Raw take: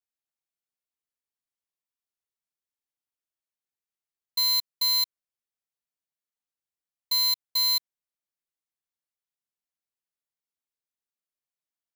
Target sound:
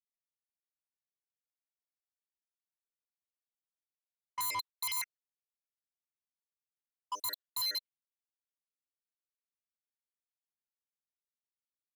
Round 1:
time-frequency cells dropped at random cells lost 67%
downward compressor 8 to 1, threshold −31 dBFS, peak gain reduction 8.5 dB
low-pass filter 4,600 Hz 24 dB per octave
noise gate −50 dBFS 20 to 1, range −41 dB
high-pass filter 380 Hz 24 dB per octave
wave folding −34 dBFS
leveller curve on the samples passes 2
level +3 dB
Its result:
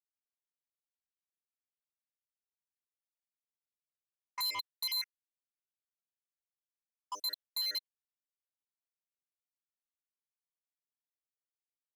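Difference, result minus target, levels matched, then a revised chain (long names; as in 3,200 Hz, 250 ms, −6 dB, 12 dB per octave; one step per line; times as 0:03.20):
downward compressor: peak gain reduction +8.5 dB; 1,000 Hz band −5.0 dB
time-frequency cells dropped at random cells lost 67%
low-pass filter 4,600 Hz 24 dB per octave
noise gate −50 dBFS 20 to 1, range −41 dB
high-pass filter 380 Hz 24 dB per octave
parametric band 990 Hz +6 dB 0.36 octaves
wave folding −34 dBFS
leveller curve on the samples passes 2
level +3 dB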